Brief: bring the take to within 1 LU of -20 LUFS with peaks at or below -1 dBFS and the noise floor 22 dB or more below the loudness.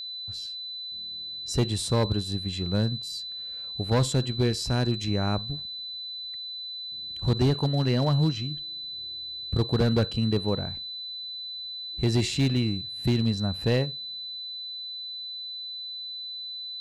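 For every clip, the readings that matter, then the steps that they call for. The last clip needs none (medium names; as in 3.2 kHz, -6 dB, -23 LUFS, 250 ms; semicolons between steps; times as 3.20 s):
clipped samples 0.9%; clipping level -17.0 dBFS; steady tone 4 kHz; tone level -34 dBFS; loudness -28.5 LUFS; peak level -17.0 dBFS; loudness target -20.0 LUFS
-> clip repair -17 dBFS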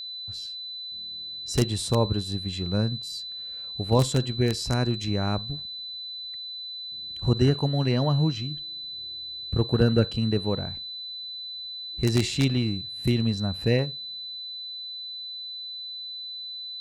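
clipped samples 0.0%; steady tone 4 kHz; tone level -34 dBFS
-> band-stop 4 kHz, Q 30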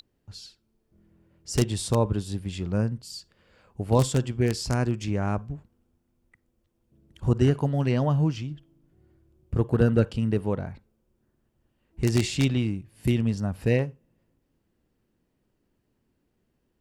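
steady tone not found; loudness -26.0 LUFS; peak level -7.5 dBFS; loudness target -20.0 LUFS
-> trim +6 dB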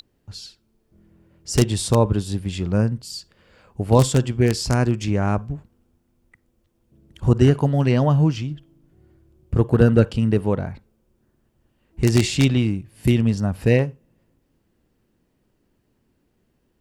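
loudness -20.0 LUFS; peak level -1.5 dBFS; noise floor -68 dBFS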